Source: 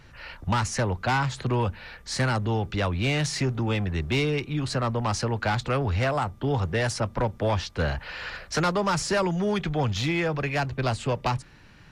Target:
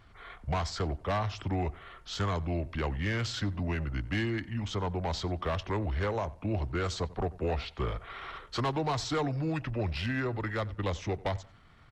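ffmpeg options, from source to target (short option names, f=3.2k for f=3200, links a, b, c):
-filter_complex "[0:a]asetrate=34006,aresample=44100,atempo=1.29684,asplit=2[a][b];[b]adelay=92,lowpass=f=3.4k:p=1,volume=-20.5dB,asplit=2[c][d];[d]adelay=92,lowpass=f=3.4k:p=1,volume=0.3[e];[c][e]amix=inputs=2:normalize=0[f];[a][f]amix=inputs=2:normalize=0,volume=-6dB"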